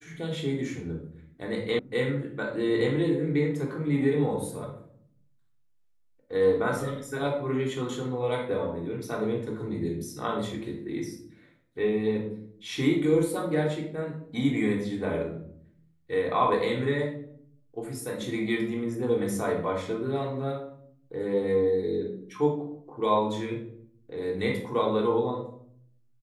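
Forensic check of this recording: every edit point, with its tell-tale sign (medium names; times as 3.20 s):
1.79 s: sound stops dead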